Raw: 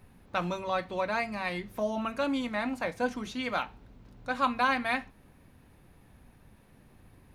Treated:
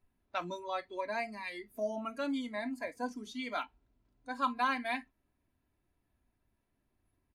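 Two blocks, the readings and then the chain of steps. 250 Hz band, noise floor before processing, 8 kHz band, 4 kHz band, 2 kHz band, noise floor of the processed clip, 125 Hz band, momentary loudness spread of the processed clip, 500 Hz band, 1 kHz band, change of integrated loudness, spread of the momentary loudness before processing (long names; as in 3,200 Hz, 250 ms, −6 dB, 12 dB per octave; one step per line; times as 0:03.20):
−5.5 dB, −59 dBFS, −5.5 dB, −6.0 dB, −6.5 dB, −81 dBFS, below −10 dB, 9 LU, −6.0 dB, −5.0 dB, −6.0 dB, 8 LU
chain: noise reduction from a noise print of the clip's start 16 dB
comb filter 3 ms, depth 44%
level −6 dB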